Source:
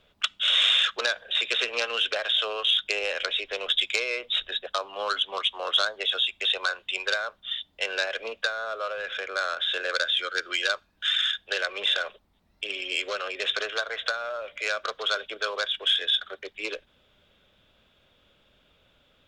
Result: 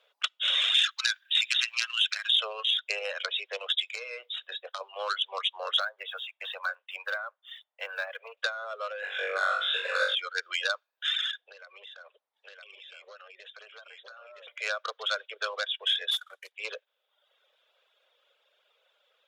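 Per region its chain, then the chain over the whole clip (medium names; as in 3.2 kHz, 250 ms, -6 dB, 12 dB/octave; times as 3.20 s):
0.74–2.40 s: high-pass 1.4 kHz 24 dB/octave + treble shelf 4.5 kHz +11.5 dB
3.81–4.81 s: peaking EQ 650 Hz -3.5 dB 0.25 oct + compression 2.5:1, threshold -31 dBFS + doubling 23 ms -13 dB
5.80–8.37 s: block-companded coder 5-bit + three-band isolator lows -21 dB, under 500 Hz, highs -17 dB, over 2.4 kHz
9.00–10.15 s: peaking EQ 4.7 kHz -10 dB 0.63 oct + band-stop 6.1 kHz, Q 6.1 + flutter echo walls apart 3.6 m, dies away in 1 s
11.40–14.47 s: delay 964 ms -5.5 dB + compression 3:1, threshold -46 dBFS + distance through air 55 m
16.11–16.52 s: CVSD coder 64 kbps + peaking EQ 300 Hz -13.5 dB 2.9 oct
whole clip: Chebyshev high-pass 480 Hz, order 4; peaking EQ 8.3 kHz -2.5 dB 0.25 oct; reverb removal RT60 0.88 s; trim -2.5 dB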